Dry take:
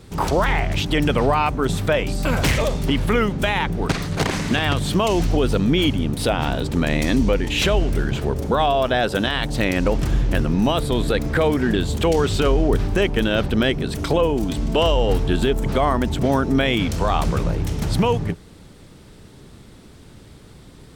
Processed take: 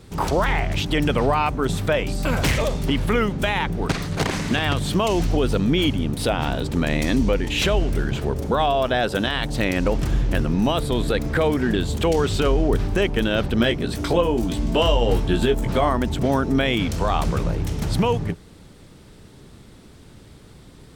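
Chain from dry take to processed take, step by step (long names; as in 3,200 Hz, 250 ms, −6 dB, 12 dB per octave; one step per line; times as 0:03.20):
0:13.56–0:15.89: double-tracking delay 17 ms −5.5 dB
level −1.5 dB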